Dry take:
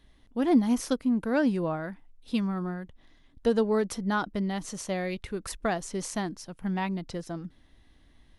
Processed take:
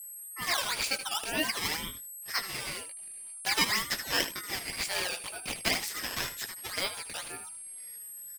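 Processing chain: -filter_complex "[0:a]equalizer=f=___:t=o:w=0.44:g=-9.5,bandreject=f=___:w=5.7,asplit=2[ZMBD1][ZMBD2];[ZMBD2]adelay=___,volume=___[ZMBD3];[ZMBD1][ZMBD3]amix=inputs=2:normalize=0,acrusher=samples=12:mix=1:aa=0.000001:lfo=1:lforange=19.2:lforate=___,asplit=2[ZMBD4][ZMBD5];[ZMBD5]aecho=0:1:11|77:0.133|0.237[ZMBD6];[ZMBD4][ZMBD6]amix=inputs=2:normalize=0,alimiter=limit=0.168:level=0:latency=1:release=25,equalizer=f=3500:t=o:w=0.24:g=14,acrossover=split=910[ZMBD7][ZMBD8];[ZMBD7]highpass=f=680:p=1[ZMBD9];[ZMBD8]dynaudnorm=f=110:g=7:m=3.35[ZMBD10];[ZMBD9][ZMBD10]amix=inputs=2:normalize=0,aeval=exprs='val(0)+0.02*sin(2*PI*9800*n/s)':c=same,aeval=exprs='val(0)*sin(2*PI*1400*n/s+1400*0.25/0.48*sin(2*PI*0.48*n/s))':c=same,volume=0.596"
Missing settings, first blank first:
950, 940, 18, 0.631, 2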